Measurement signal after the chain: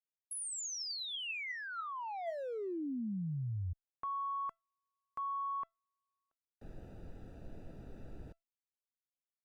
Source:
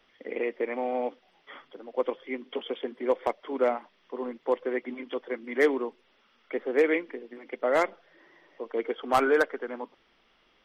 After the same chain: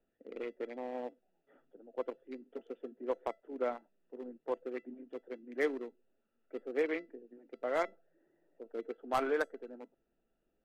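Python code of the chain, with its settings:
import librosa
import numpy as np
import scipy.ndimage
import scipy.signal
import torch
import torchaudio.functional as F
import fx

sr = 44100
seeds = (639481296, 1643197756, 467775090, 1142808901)

y = fx.wiener(x, sr, points=41)
y = fx.comb_fb(y, sr, f0_hz=670.0, decay_s=0.18, harmonics='all', damping=0.0, mix_pct=60)
y = y * librosa.db_to_amplitude(-1.5)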